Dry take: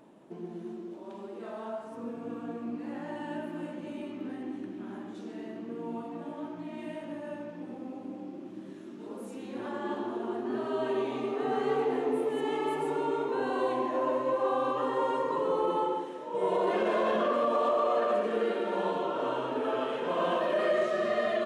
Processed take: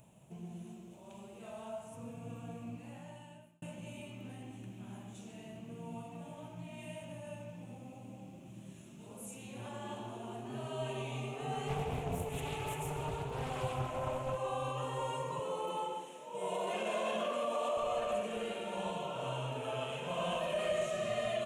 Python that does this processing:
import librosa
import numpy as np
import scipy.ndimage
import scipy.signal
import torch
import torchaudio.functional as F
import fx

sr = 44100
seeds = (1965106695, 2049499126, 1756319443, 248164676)

y = fx.doppler_dist(x, sr, depth_ms=0.36, at=(11.68, 14.38))
y = fx.highpass(y, sr, hz=200.0, slope=24, at=(15.39, 17.77))
y = fx.edit(y, sr, fx.fade_out_span(start_s=2.69, length_s=0.93), tone=tone)
y = fx.curve_eq(y, sr, hz=(130.0, 310.0, 660.0, 1200.0, 1800.0, 2600.0, 4800.0, 6800.0), db=(0, -29, -16, -21, -22, -8, -19, -2))
y = y * 10.0 ** (11.0 / 20.0)